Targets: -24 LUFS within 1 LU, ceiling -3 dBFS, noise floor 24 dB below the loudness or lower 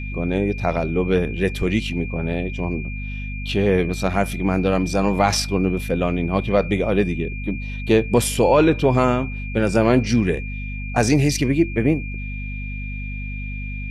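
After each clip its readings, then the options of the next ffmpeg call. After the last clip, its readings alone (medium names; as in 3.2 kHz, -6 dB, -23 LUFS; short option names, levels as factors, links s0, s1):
hum 50 Hz; highest harmonic 250 Hz; hum level -27 dBFS; steady tone 2.4 kHz; tone level -34 dBFS; loudness -21.0 LUFS; peak level -4.5 dBFS; loudness target -24.0 LUFS
-> -af "bandreject=f=50:t=h:w=6,bandreject=f=100:t=h:w=6,bandreject=f=150:t=h:w=6,bandreject=f=200:t=h:w=6,bandreject=f=250:t=h:w=6"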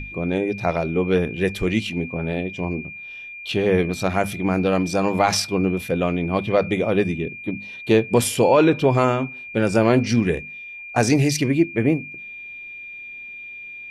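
hum not found; steady tone 2.4 kHz; tone level -34 dBFS
-> -af "bandreject=f=2400:w=30"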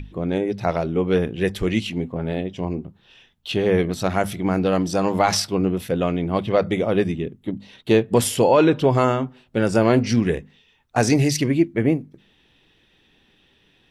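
steady tone not found; loudness -21.0 LUFS; peak level -5.0 dBFS; loudness target -24.0 LUFS
-> -af "volume=0.708"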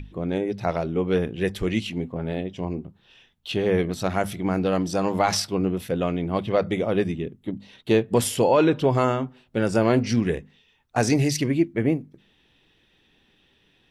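loudness -24.0 LUFS; peak level -8.0 dBFS; noise floor -63 dBFS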